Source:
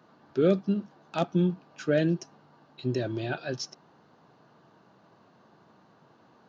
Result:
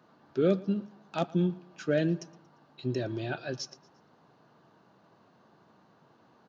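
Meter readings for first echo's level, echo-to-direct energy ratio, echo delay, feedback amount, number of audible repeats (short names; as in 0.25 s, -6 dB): -22.5 dB, -21.5 dB, 0.116 s, 45%, 2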